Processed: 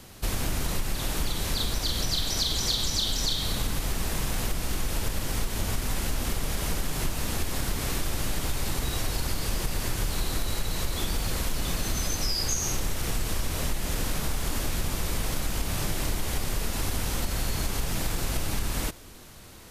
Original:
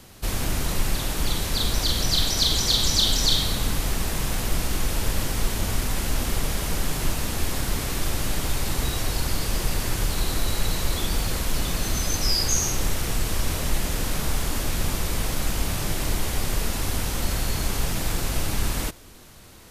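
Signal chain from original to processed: compressor, threshold -23 dBFS, peak gain reduction 8.5 dB

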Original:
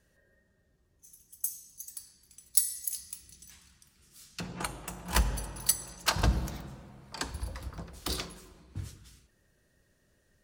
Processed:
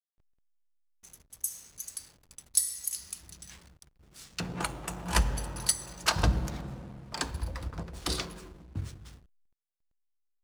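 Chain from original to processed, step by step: LPF 12000 Hz 24 dB/oct; in parallel at +2 dB: compressor, threshold -43 dBFS, peak gain reduction 21 dB; on the sum: backlash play -44.5 dBFS

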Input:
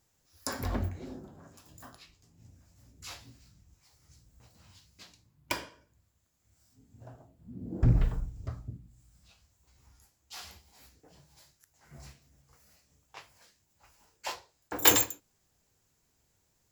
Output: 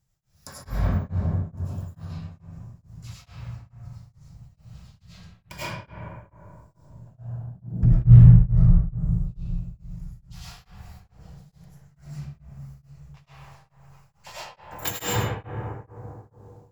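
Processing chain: resonant low shelf 210 Hz +8.5 dB, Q 3; reverb RT60 3.1 s, pre-delay 60 ms, DRR -12.5 dB; beating tremolo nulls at 2.3 Hz; gain -7 dB

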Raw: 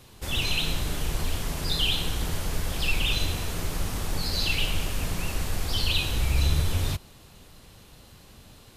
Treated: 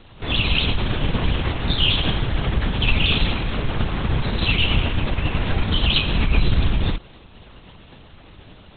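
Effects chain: LPC vocoder at 8 kHz whisper; gain +6.5 dB

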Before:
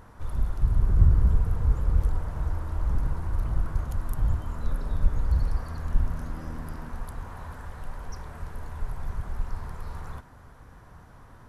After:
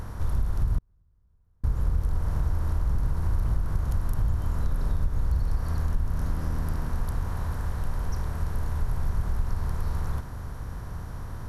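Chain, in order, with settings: per-bin compression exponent 0.6; compressor 6:1, threshold -20 dBFS, peak gain reduction 10.5 dB; 0.78–1.64 flipped gate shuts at -19 dBFS, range -40 dB

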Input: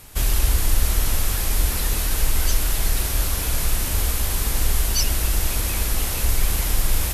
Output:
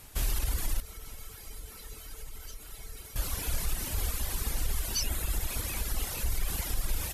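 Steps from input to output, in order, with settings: reverb removal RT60 1.7 s; limiter -14 dBFS, peak gain reduction 6 dB; 0.8–3.16 resonator 440 Hz, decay 0.17 s, harmonics odd, mix 80%; gain -6 dB

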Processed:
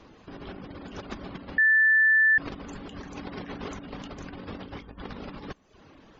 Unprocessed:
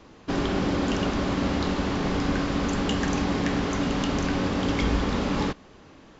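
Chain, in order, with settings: spectral gate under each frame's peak -30 dB strong; reverb removal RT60 0.54 s; 3.14–3.65 low shelf 170 Hz -4 dB; negative-ratio compressor -31 dBFS, ratio -0.5; 1.58–2.38 bleep 1760 Hz -9.5 dBFS; gain -7 dB

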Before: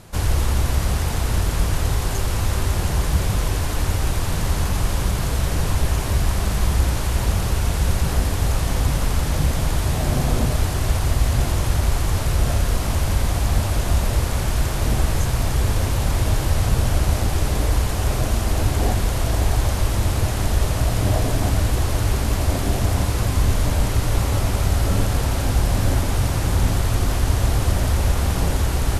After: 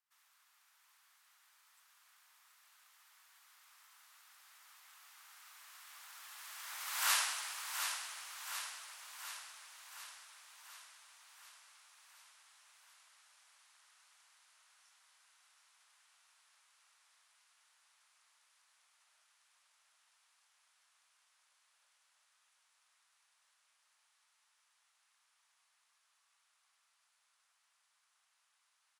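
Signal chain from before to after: Doppler pass-by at 7.12, 60 m/s, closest 3.7 m; inverse Chebyshev high-pass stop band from 320 Hz, stop band 60 dB; on a send: feedback echo 0.725 s, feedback 59%, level -7 dB; on the sum: gain +3 dB

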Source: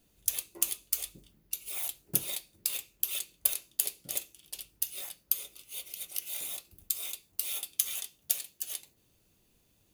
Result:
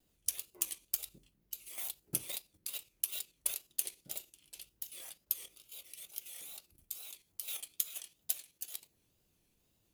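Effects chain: wow and flutter 140 cents; level quantiser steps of 9 dB; gain -3.5 dB

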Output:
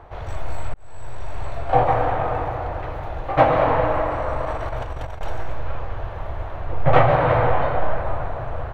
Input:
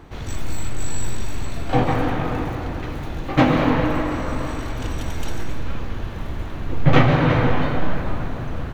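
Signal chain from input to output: 4.45–5.21 negative-ratio compressor -26 dBFS, ratio -0.5; EQ curve 110 Hz 0 dB, 230 Hz -15 dB, 640 Hz +9 dB, 6600 Hz -13 dB; 0.74–1.46 fade in; gain -1 dB

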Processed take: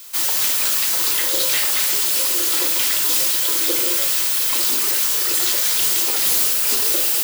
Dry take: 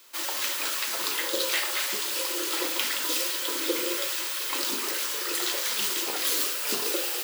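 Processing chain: high shelf 4600 Hz +12 dB; soft clip -19.5 dBFS, distortion -11 dB; gain +5.5 dB

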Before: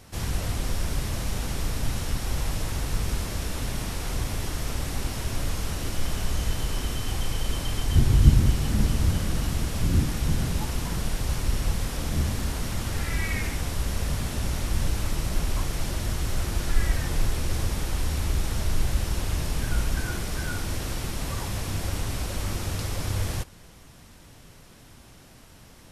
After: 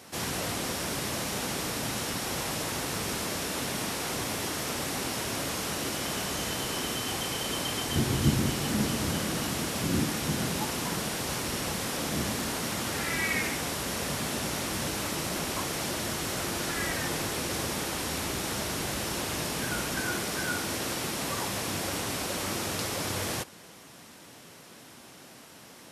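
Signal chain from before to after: HPF 220 Hz 12 dB/oct; gain +3.5 dB

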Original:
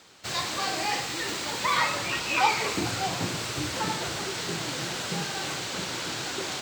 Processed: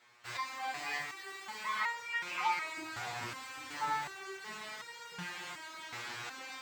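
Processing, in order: ten-band EQ 1000 Hz +9 dB, 2000 Hz +11 dB, 16000 Hz +5 dB; stepped resonator 2.7 Hz 120–470 Hz; gain -6.5 dB

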